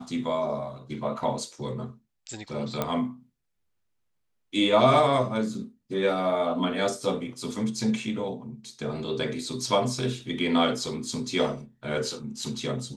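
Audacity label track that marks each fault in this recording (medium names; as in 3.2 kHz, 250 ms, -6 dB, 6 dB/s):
2.820000	2.820000	pop -12 dBFS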